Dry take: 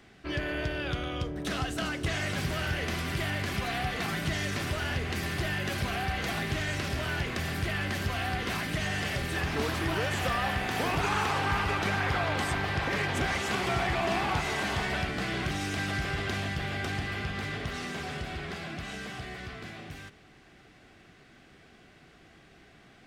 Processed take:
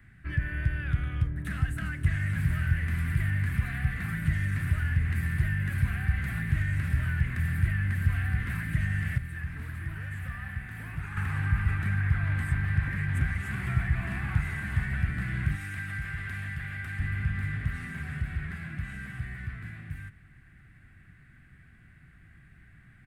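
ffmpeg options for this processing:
-filter_complex "[0:a]asettb=1/sr,asplit=3[a][b][c];[a]atrim=end=15.554[d];[b]atrim=start=15.55:end=17,asetpts=PTS-STARTPTS,afade=t=in:d=0.004:c=qsin,afade=t=out:st=1.446:d=0.004:c=qsin,lowshelf=f=480:g=-9.5[e];[c]atrim=start=16.996[f];[d][e]acrossfade=d=0.004:c1=hsin:c2=qsin[g];[g][f]acrossfade=d=0.004:c1=qsin:c2=hsin,asplit=3[h][i][j];[h]atrim=end=9.182[k];[i]atrim=start=9.178:end=11.172,asetpts=PTS-STARTPTS,volume=-9dB[l];[j]atrim=start=11.168[m];[k][l]acrossfade=d=0.004:c1=hsin:c2=hsin[n];[n][m]acrossfade=d=0.004:c1=hsin:c2=hsin,firequalizer=gain_entry='entry(120,0);entry(200,-10);entry(420,-27);entry(820,-24);entry(1700,-5);entry(3100,-23);entry(5800,-29);entry(8800,-12)':delay=0.05:min_phase=1,acrossover=split=260[o][p];[p]acompressor=threshold=-43dB:ratio=6[q];[o][q]amix=inputs=2:normalize=0,volume=8.5dB"

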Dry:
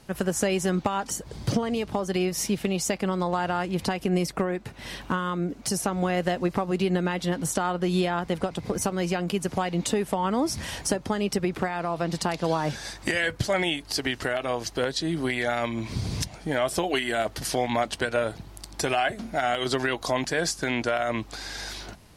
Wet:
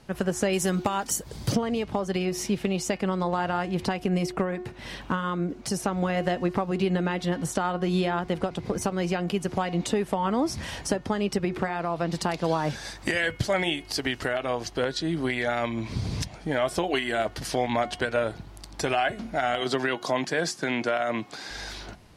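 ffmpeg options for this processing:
-filter_complex "[0:a]asettb=1/sr,asplit=3[a][b][c];[a]atrim=end=0.534[d];[b]atrim=start=0.53:end=1.56,asetpts=PTS-STARTPTS,afade=t=in:d=0.004:c=qsin,afade=t=out:st=1.026:d=0.004:c=qsin,aemphasis=mode=production:type=50fm[e];[c]atrim=start=1.556[f];[d][e]acrossfade=d=0.004:c1=hsin:c2=qsin[g];[g][f]acrossfade=d=0.004:c1=qsin:c2=hsin,asettb=1/sr,asplit=3[h][i][j];[h]atrim=end=12.134[k];[i]atrim=start=12.13:end=14.29,asetpts=PTS-STARTPTS,afade=t=in:d=0.004:c=qsin,afade=t=out:st=2.156:d=0.004:c=qsin,highshelf=f=10k:g=7[l];[j]atrim=start=14.286[m];[k][l]acrossfade=d=0.004:c1=hsin:c2=qsin[n];[n][m]acrossfade=d=0.004:c1=qsin:c2=hsin,asettb=1/sr,asplit=3[o][p][q];[o]atrim=end=19.614[r];[p]atrim=start=19.61:end=21.51,asetpts=PTS-STARTPTS,afade=t=in:d=0.004:c=qsin,afade=t=out:st=1.896:d=0.004:c=qsin,highpass=f=130:w=0.5412,highpass=f=130:w=1.3066[s];[q]atrim=start=21.506[t];[r][s]acrossfade=d=0.004:c1=hsin:c2=qsin[u];[u][t]acrossfade=d=0.004:c1=qsin:c2=hsin,highshelf=f=7.4k:g=-9.5,bandreject=f=362.1:t=h:w=4,bandreject=f=724.2:t=h:w=4,bandreject=f=1.0863k:t=h:w=4,bandreject=f=1.4484k:t=h:w=4,bandreject=f=1.8105k:t=h:w=4,bandreject=f=2.1726k:t=h:w=4,bandreject=f=2.5347k:t=h:w=4,bandreject=f=2.8968k:t=h:w=4,bandreject=f=3.2589k:t=h:w=4"

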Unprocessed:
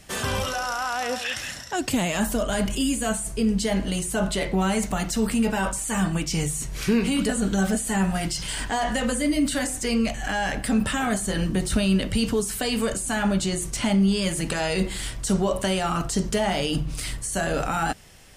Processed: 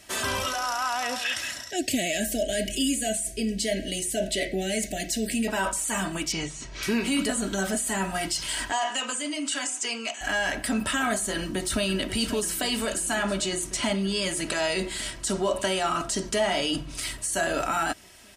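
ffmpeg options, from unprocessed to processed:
-filter_complex "[0:a]asettb=1/sr,asplit=3[a][b][c];[a]atrim=end=1.704[d];[b]atrim=start=1.7:end=5.48,asetpts=PTS-STARTPTS,afade=t=in:d=0.004:c=qsin,afade=t=out:st=3.776:d=0.004:c=qsin,asuperstop=centerf=1100:order=8:qfactor=1.1[e];[c]atrim=start=5.476[f];[d][e]acrossfade=d=0.004:c1=hsin:c2=qsin[g];[g][f]acrossfade=d=0.004:c1=qsin:c2=hsin,asettb=1/sr,asplit=3[h][i][j];[h]atrim=end=6.324[k];[i]atrim=start=6.32:end=6.83,asetpts=PTS-STARTPTS,afade=t=in:d=0.004:c=qsin,afade=t=out:st=0.506:d=0.004:c=qsin,lowpass=f=5.9k:w=0.5412,lowpass=f=5.9k:w=1.3066[l];[j]atrim=start=6.826[m];[k][l]acrossfade=d=0.004:c1=hsin:c2=qsin[n];[n][m]acrossfade=d=0.004:c1=qsin:c2=hsin,asettb=1/sr,asplit=3[o][p][q];[o]atrim=end=8.724[r];[p]atrim=start=8.72:end=10.21,asetpts=PTS-STARTPTS,afade=t=in:d=0.004:c=qsin,afade=t=out:st=1.486:d=0.004:c=qsin,highpass=f=310:w=0.5412,highpass=f=310:w=1.3066,equalizer=f=330:t=q:w=4:g=-9,equalizer=f=570:t=q:w=4:g=-9,equalizer=f=1.9k:t=q:w=4:g=-5,equalizer=f=2.8k:t=q:w=4:g=4,equalizer=f=4.1k:t=q:w=4:g=-5,equalizer=f=7.2k:t=q:w=4:g=4,lowpass=f=8.4k:w=0.5412,lowpass=f=8.4k:w=1.3066[s];[q]atrim=start=10.206[t];[r][s]acrossfade=d=0.004:c1=hsin:c2=qsin[u];[u][t]acrossfade=d=0.004:c1=qsin:c2=hsin,asplit=2[v][w];[w]afade=t=in:st=11.34:d=0.01,afade=t=out:st=11.86:d=0.01,aecho=0:1:540|1080|1620|2160|2700|3240|3780|4320|4860|5400|5940|6480:0.298538|0.238831|0.191064|0.152852|0.122281|0.097825|0.07826|0.062608|0.0500864|0.0400691|0.0320553|0.0256442[x];[v][x]amix=inputs=2:normalize=0,asettb=1/sr,asplit=3[y][z][aa];[y]atrim=end=13.154[ab];[z]atrim=start=13.15:end=17.02,asetpts=PTS-STARTPTS,afade=t=in:d=0.004:c=qsin,afade=t=out:st=3.866:d=0.004:c=qsin,lowpass=11k[ac];[aa]atrim=start=17.016[ad];[ab][ac]acrossfade=d=0.004:c1=hsin:c2=qsin[ae];[ae][ad]acrossfade=d=0.004:c1=qsin:c2=hsin,highpass=f=100:p=1,lowshelf=f=500:g=-5,aecho=1:1:3.1:0.5"

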